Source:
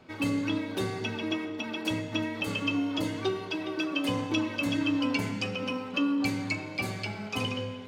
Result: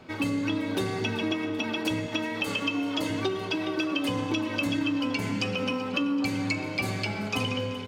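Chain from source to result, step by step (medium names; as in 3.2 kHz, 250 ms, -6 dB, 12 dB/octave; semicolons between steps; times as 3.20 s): 2.06–3.10 s: bass shelf 190 Hz -11.5 dB; compression, threshold -30 dBFS, peak gain reduction 7 dB; feedback delay 384 ms, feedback 56%, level -16.5 dB; trim +5.5 dB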